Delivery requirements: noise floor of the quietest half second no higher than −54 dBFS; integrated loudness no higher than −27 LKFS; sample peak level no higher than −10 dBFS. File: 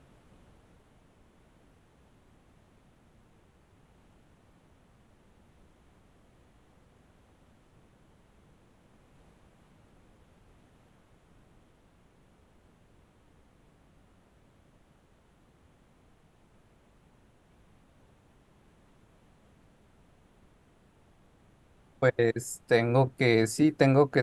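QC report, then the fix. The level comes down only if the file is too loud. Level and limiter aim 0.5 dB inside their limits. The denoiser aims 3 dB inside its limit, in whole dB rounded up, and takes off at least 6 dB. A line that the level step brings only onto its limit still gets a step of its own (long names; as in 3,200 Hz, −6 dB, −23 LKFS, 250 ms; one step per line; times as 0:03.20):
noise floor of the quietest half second −63 dBFS: in spec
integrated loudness −25.5 LKFS: out of spec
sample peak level −6.5 dBFS: out of spec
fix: level −2 dB
brickwall limiter −10.5 dBFS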